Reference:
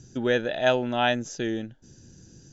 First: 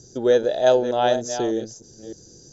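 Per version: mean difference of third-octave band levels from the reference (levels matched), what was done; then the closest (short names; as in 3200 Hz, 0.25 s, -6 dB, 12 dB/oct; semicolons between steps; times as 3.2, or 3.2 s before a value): 4.5 dB: reverse delay 0.304 s, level -10 dB; EQ curve 250 Hz 0 dB, 450 Hz +12 dB, 2600 Hz -8 dB, 4500 Hz +11 dB, 7300 Hz +9 dB; gain -2 dB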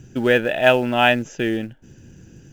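3.0 dB: resonant high shelf 3400 Hz -7 dB, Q 3; in parallel at -8.5 dB: short-mantissa float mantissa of 2-bit; on the sum: gain +3.5 dB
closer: second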